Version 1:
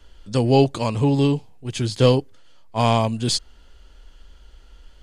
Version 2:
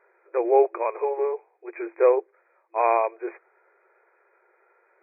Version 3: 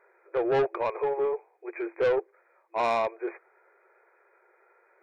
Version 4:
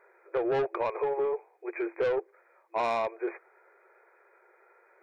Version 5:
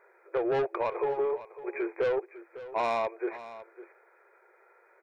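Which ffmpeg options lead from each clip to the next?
ffmpeg -i in.wav -af "afftfilt=real='re*between(b*sr/4096,340,2500)':imag='im*between(b*sr/4096,340,2500)':win_size=4096:overlap=0.75" out.wav
ffmpeg -i in.wav -af "asoftclip=type=tanh:threshold=-20dB" out.wav
ffmpeg -i in.wav -af "acompressor=threshold=-27dB:ratio=6,volume=1.5dB" out.wav
ffmpeg -i in.wav -af "aecho=1:1:553:0.168" out.wav

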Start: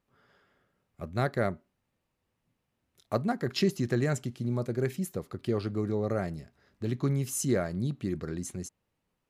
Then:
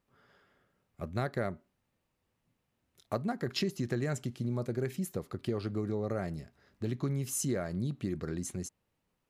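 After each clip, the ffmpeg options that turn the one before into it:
ffmpeg -i in.wav -af "acompressor=threshold=-30dB:ratio=3" out.wav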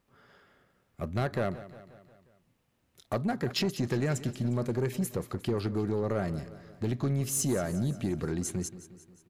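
ffmpeg -i in.wav -af "asoftclip=type=tanh:threshold=-27dB,aecho=1:1:178|356|534|712|890:0.168|0.094|0.0526|0.0295|0.0165,volume=5.5dB" out.wav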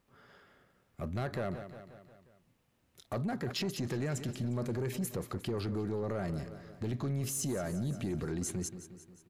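ffmpeg -i in.wav -af "alimiter=level_in=4.5dB:limit=-24dB:level=0:latency=1:release=13,volume=-4.5dB" out.wav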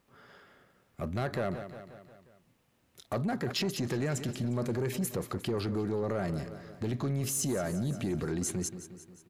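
ffmpeg -i in.wav -af "lowshelf=frequency=100:gain=-5.5,volume=4dB" out.wav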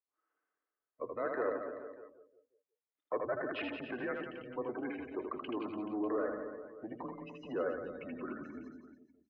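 ffmpeg -i in.wav -af "afftdn=noise_reduction=32:noise_floor=-40,highpass=frequency=480:width_type=q:width=0.5412,highpass=frequency=480:width_type=q:width=1.307,lowpass=frequency=2700:width_type=q:width=0.5176,lowpass=frequency=2700:width_type=q:width=0.7071,lowpass=frequency=2700:width_type=q:width=1.932,afreqshift=-110,aecho=1:1:80|176|291.2|429.4|595.3:0.631|0.398|0.251|0.158|0.1" out.wav

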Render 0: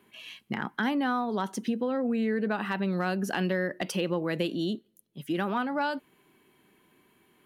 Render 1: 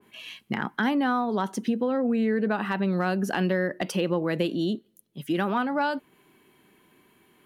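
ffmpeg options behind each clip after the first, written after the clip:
ffmpeg -i in.wav -af "adynamicequalizer=threshold=0.00562:dfrequency=1700:dqfactor=0.7:tfrequency=1700:tqfactor=0.7:attack=5:release=100:ratio=0.375:range=1.5:mode=cutabove:tftype=highshelf,volume=3.5dB" out.wav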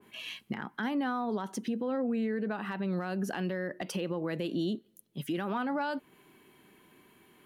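ffmpeg -i in.wav -af "alimiter=level_in=0.5dB:limit=-24dB:level=0:latency=1:release=232,volume=-0.5dB" out.wav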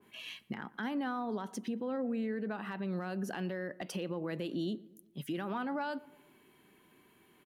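ffmpeg -i in.wav -filter_complex "[0:a]asplit=2[link_01][link_02];[link_02]adelay=117,lowpass=frequency=1500:poles=1,volume=-20dB,asplit=2[link_03][link_04];[link_04]adelay=117,lowpass=frequency=1500:poles=1,volume=0.54,asplit=2[link_05][link_06];[link_06]adelay=117,lowpass=frequency=1500:poles=1,volume=0.54,asplit=2[link_07][link_08];[link_08]adelay=117,lowpass=frequency=1500:poles=1,volume=0.54[link_09];[link_01][link_03][link_05][link_07][link_09]amix=inputs=5:normalize=0,volume=-4dB" out.wav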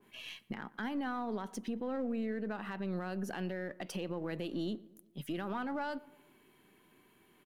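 ffmpeg -i in.wav -af "aeval=exprs='if(lt(val(0),0),0.708*val(0),val(0))':channel_layout=same" out.wav

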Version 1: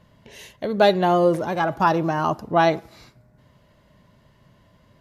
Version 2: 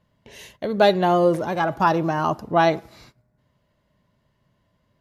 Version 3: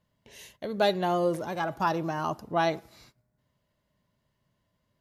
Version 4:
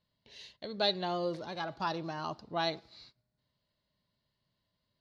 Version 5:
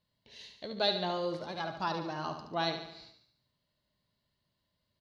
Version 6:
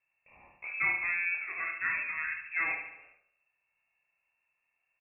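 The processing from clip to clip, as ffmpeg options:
ffmpeg -i in.wav -af "agate=range=-11dB:threshold=-50dB:ratio=16:detection=peak" out.wav
ffmpeg -i in.wav -af "highshelf=frequency=4400:gain=7.5,volume=-8.5dB" out.wav
ffmpeg -i in.wav -af "lowpass=frequency=4300:width_type=q:width=5.2,volume=-8dB" out.wav
ffmpeg -i in.wav -af "aecho=1:1:72|144|216|288|360|432:0.398|0.215|0.116|0.0627|0.0339|0.0183" out.wav
ffmpeg -i in.wav -af "lowpass=frequency=2400:width_type=q:width=0.5098,lowpass=frequency=2400:width_type=q:width=0.6013,lowpass=frequency=2400:width_type=q:width=0.9,lowpass=frequency=2400:width_type=q:width=2.563,afreqshift=-2800,aecho=1:1:27|59:0.631|0.501" out.wav

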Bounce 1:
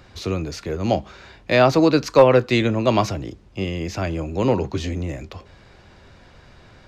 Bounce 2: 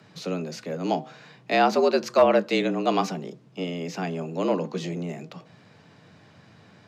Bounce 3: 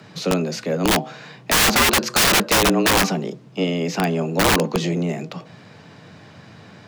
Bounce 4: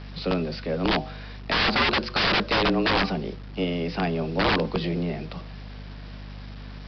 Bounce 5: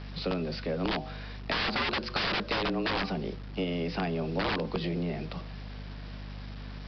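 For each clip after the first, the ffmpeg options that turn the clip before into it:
ffmpeg -i in.wav -af "bandreject=frequency=137.8:width_type=h:width=4,bandreject=frequency=275.6:width_type=h:width=4,bandreject=frequency=413.4:width_type=h:width=4,bandreject=frequency=551.2:width_type=h:width=4,bandreject=frequency=689:width_type=h:width=4,bandreject=frequency=826.8:width_type=h:width=4,bandreject=frequency=964.6:width_type=h:width=4,bandreject=frequency=1102.4:width_type=h:width=4,afreqshift=83,volume=-5dB" out.wav
ffmpeg -i in.wav -af "aeval=exprs='(mod(9.44*val(0)+1,2)-1)/9.44':channel_layout=same,volume=9dB" out.wav
ffmpeg -i in.wav -af "aeval=exprs='val(0)+0.0224*(sin(2*PI*50*n/s)+sin(2*PI*2*50*n/s)/2+sin(2*PI*3*50*n/s)/3+sin(2*PI*4*50*n/s)/4+sin(2*PI*5*50*n/s)/5)':channel_layout=same,aresample=11025,acrusher=bits=6:mix=0:aa=0.000001,aresample=44100,volume=-5dB" out.wav
ffmpeg -i in.wav -af "acompressor=threshold=-25dB:ratio=6,volume=-2dB" out.wav

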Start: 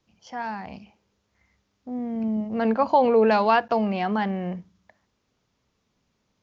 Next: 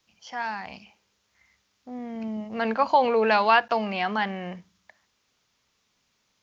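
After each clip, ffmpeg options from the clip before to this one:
ffmpeg -i in.wav -filter_complex "[0:a]acrossover=split=4500[link_01][link_02];[link_02]acompressor=threshold=-56dB:ratio=4:attack=1:release=60[link_03];[link_01][link_03]amix=inputs=2:normalize=0,tiltshelf=frequency=860:gain=-7.5" out.wav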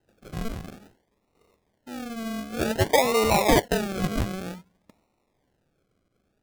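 ffmpeg -i in.wav -af "acrusher=samples=38:mix=1:aa=0.000001:lfo=1:lforange=22.8:lforate=0.54" out.wav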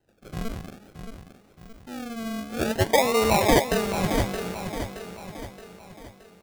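ffmpeg -i in.wav -af "aecho=1:1:622|1244|1866|2488|3110:0.376|0.177|0.083|0.039|0.0183" out.wav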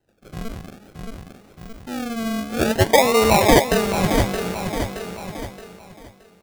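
ffmpeg -i in.wav -af "dynaudnorm=framelen=230:gausssize=9:maxgain=8.5dB" out.wav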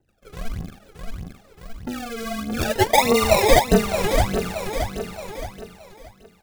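ffmpeg -i in.wav -af "aphaser=in_gain=1:out_gain=1:delay=2.5:decay=0.75:speed=1.6:type=triangular,volume=-4.5dB" out.wav

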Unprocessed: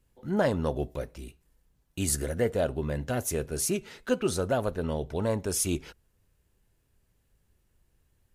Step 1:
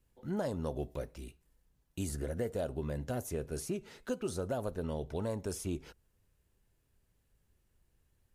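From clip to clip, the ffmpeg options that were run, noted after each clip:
ffmpeg -i in.wav -filter_complex "[0:a]acrossover=split=1200|4500[link_01][link_02][link_03];[link_01]acompressor=threshold=-28dB:ratio=4[link_04];[link_02]acompressor=threshold=-52dB:ratio=4[link_05];[link_03]acompressor=threshold=-42dB:ratio=4[link_06];[link_04][link_05][link_06]amix=inputs=3:normalize=0,volume=-4dB" out.wav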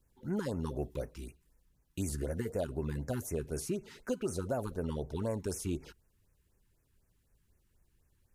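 ffmpeg -i in.wav -af "afftfilt=real='re*(1-between(b*sr/1024,540*pow(4000/540,0.5+0.5*sin(2*PI*4*pts/sr))/1.41,540*pow(4000/540,0.5+0.5*sin(2*PI*4*pts/sr))*1.41))':imag='im*(1-between(b*sr/1024,540*pow(4000/540,0.5+0.5*sin(2*PI*4*pts/sr))/1.41,540*pow(4000/540,0.5+0.5*sin(2*PI*4*pts/sr))*1.41))':win_size=1024:overlap=0.75,volume=1.5dB" out.wav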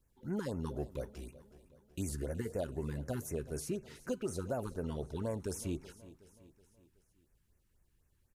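ffmpeg -i in.wav -af "aecho=1:1:373|746|1119|1492:0.126|0.0629|0.0315|0.0157,volume=-2.5dB" out.wav

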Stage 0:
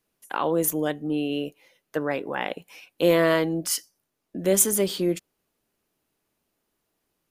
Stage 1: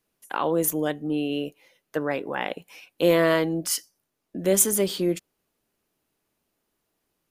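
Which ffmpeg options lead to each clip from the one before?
ffmpeg -i in.wav -af anull out.wav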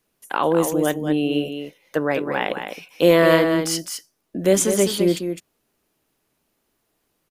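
ffmpeg -i in.wav -filter_complex "[0:a]aecho=1:1:207:0.422,acrossover=split=7300[link_01][link_02];[link_02]acompressor=threshold=-36dB:ratio=4:attack=1:release=60[link_03];[link_01][link_03]amix=inputs=2:normalize=0,volume=5dB" out.wav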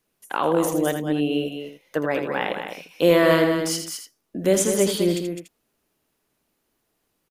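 ffmpeg -i in.wav -af "aecho=1:1:81:0.398,volume=-2.5dB" out.wav

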